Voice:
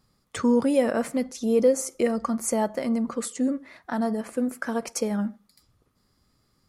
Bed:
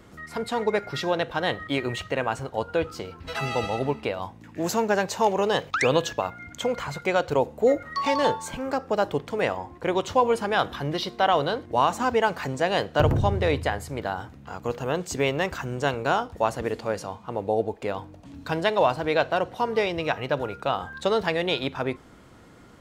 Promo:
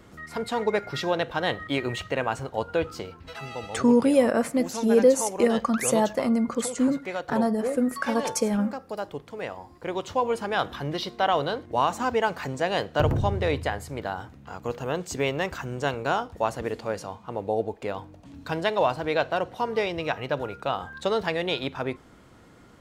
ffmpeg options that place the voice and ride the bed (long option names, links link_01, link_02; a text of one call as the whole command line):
ffmpeg -i stem1.wav -i stem2.wav -filter_complex "[0:a]adelay=3400,volume=2dB[link_01];[1:a]volume=6.5dB,afade=type=out:start_time=3.02:duration=0.35:silence=0.375837,afade=type=in:start_time=9.48:duration=1.24:silence=0.446684[link_02];[link_01][link_02]amix=inputs=2:normalize=0" out.wav